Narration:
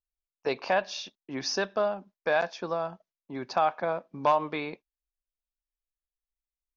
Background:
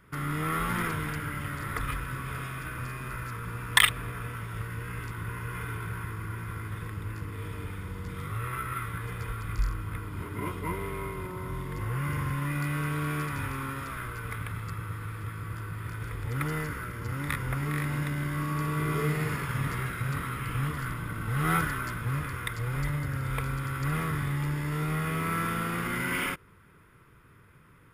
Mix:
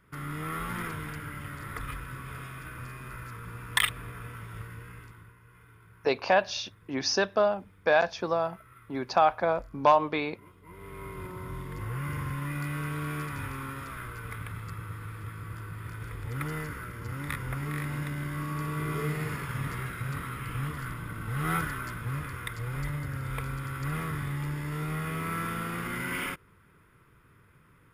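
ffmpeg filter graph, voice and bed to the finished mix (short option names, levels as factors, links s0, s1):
-filter_complex "[0:a]adelay=5600,volume=1.41[s0];[1:a]volume=4.22,afade=t=out:st=4.56:d=0.79:silence=0.16788,afade=t=in:st=10.66:d=0.57:silence=0.133352[s1];[s0][s1]amix=inputs=2:normalize=0"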